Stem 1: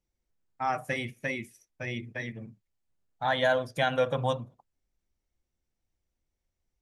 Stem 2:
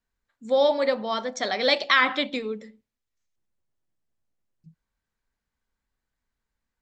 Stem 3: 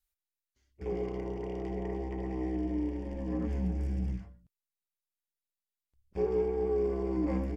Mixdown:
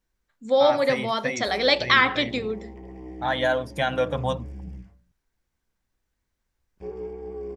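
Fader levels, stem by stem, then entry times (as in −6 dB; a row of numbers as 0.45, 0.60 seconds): +2.0, +1.5, −5.5 decibels; 0.00, 0.00, 0.65 seconds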